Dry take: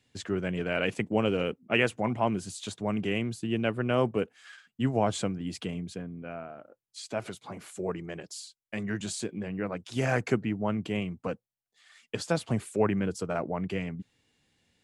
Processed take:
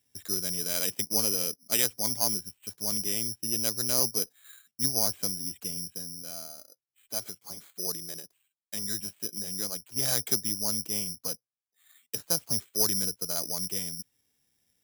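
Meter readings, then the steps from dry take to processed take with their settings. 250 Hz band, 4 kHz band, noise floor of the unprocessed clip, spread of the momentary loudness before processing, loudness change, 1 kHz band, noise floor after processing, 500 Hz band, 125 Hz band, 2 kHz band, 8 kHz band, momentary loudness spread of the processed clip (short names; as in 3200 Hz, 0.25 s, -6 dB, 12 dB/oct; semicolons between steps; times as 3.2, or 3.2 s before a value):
-9.5 dB, +8.0 dB, under -85 dBFS, 14 LU, +3.0 dB, -9.5 dB, under -85 dBFS, -9.5 dB, -10.0 dB, -9.5 dB, +15.5 dB, 13 LU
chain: added harmonics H 2 -17 dB, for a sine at -10 dBFS; careless resampling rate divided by 8×, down filtered, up zero stuff; gain -9.5 dB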